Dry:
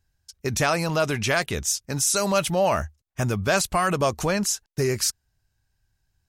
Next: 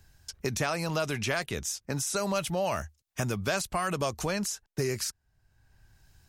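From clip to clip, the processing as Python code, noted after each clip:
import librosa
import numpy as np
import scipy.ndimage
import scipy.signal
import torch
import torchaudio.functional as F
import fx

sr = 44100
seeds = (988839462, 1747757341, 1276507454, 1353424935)

y = fx.band_squash(x, sr, depth_pct=70)
y = y * 10.0 ** (-7.5 / 20.0)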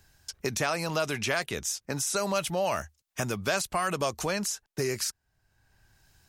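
y = fx.low_shelf(x, sr, hz=170.0, db=-8.0)
y = y * 10.0 ** (2.0 / 20.0)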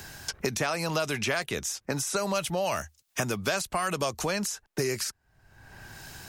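y = fx.band_squash(x, sr, depth_pct=70)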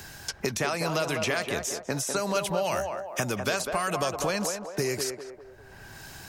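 y = fx.echo_banded(x, sr, ms=200, feedback_pct=54, hz=650.0, wet_db=-3.5)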